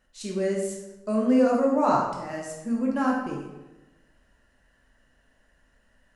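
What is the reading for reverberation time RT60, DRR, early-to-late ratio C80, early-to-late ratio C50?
1.1 s, -2.0 dB, 5.5 dB, 2.5 dB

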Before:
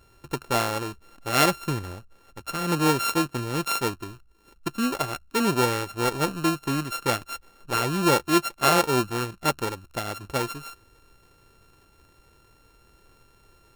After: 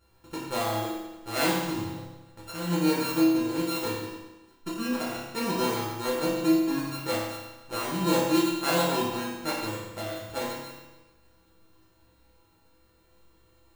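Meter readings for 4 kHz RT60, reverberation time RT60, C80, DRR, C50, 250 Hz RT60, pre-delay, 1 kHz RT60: 1.1 s, 1.1 s, 2.5 dB, -8.5 dB, 0.0 dB, 1.1 s, 6 ms, 1.1 s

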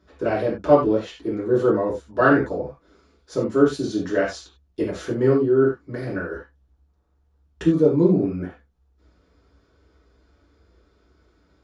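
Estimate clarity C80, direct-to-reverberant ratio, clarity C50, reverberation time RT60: 11.0 dB, -7.0 dB, 5.0 dB, no single decay rate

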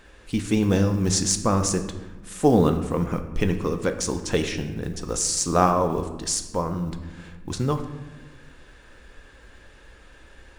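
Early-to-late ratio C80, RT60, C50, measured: 11.5 dB, 1.2 s, 10.0 dB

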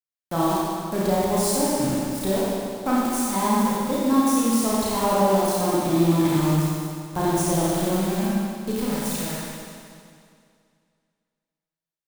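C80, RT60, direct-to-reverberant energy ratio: -2.0 dB, 2.3 s, -7.0 dB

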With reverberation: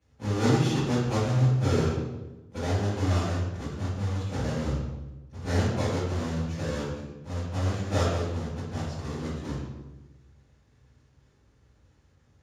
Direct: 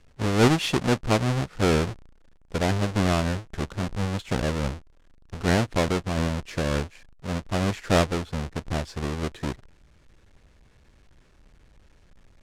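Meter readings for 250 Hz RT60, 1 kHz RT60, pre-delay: 1.3 s, 0.95 s, 3 ms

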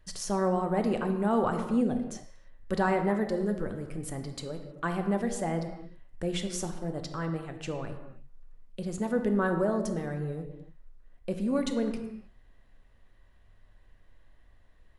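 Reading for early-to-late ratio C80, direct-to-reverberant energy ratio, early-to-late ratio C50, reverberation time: 9.0 dB, 5.5 dB, 7.5 dB, no single decay rate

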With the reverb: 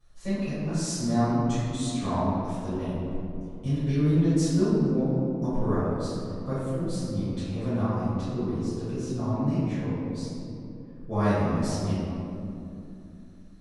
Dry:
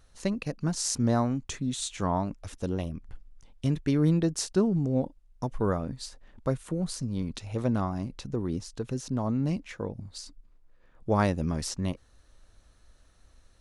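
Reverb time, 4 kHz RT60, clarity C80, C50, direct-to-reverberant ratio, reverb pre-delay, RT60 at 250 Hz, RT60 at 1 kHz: 2.8 s, 1.3 s, -1.5 dB, -4.0 dB, -16.5 dB, 3 ms, 3.9 s, 2.6 s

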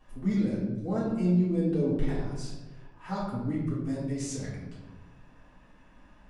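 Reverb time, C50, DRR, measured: 1.3 s, 1.0 dB, -9.5 dB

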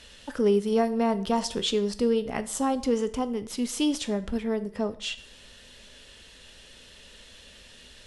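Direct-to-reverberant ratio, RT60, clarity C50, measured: 11.0 dB, 0.50 s, 16.0 dB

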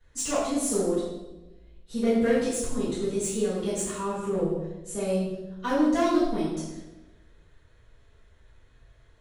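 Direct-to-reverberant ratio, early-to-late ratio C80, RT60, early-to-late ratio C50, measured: -15.0 dB, 3.5 dB, 1.1 s, 0.5 dB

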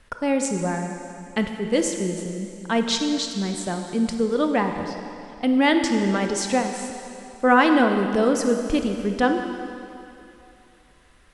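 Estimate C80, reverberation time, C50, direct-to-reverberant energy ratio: 6.0 dB, 2.7 s, 5.5 dB, 5.0 dB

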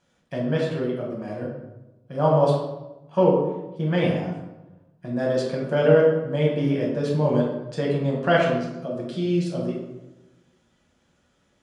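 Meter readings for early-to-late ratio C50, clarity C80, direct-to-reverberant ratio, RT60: 2.5 dB, 5.5 dB, -3.5 dB, 1.0 s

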